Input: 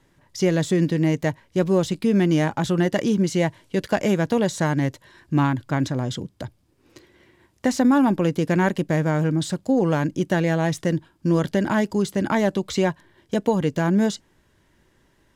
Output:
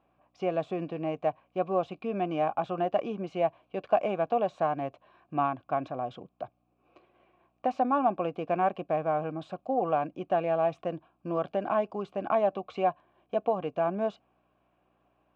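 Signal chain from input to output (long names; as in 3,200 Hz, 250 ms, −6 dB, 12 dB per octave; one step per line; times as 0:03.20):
mains hum 60 Hz, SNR 32 dB
formant filter a
bass and treble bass +3 dB, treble −15 dB
level +6.5 dB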